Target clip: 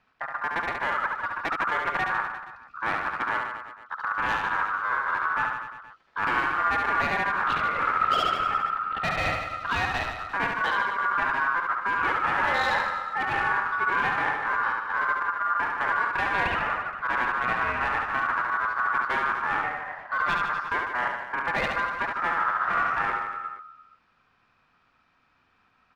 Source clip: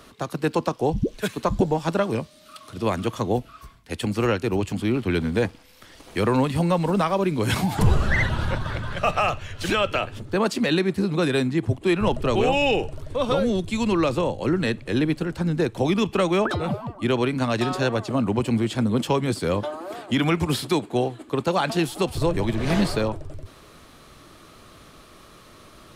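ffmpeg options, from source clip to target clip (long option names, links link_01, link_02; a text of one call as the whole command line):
ffmpeg -i in.wav -af "afwtdn=0.0501,lowpass=2500,asoftclip=type=hard:threshold=-21dB,afreqshift=-54,aeval=exprs='val(0)*sin(2*PI*1300*n/s)':channel_layout=same,aecho=1:1:70|150.5|243.1|349.5|472:0.631|0.398|0.251|0.158|0.1" out.wav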